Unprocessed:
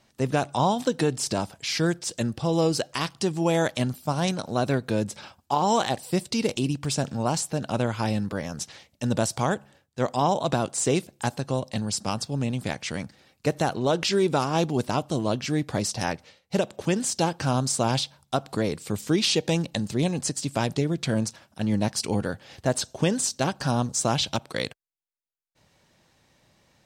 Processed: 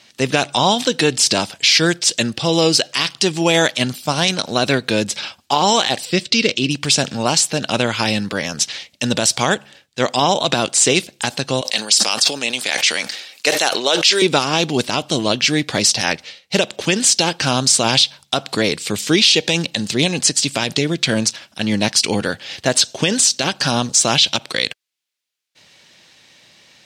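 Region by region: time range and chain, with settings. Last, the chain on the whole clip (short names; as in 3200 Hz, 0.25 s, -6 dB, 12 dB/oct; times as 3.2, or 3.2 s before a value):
6.05–6.71 running mean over 4 samples + bell 850 Hz -12 dB 0.44 oct
11.61–14.22 HPF 440 Hz + high shelf 4100 Hz +5.5 dB + sustainer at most 68 dB/s
whole clip: weighting filter D; limiter -10.5 dBFS; gain +8 dB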